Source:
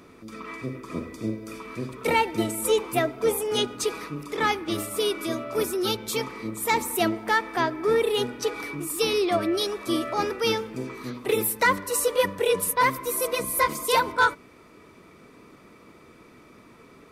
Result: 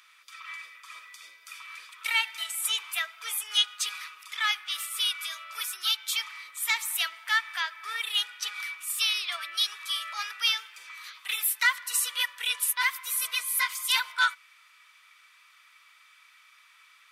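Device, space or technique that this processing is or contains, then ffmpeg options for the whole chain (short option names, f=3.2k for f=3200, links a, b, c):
headphones lying on a table: -af "highpass=f=1.4k:w=0.5412,highpass=f=1.4k:w=1.3066,equalizer=f=3.2k:t=o:w=0.46:g=6.5"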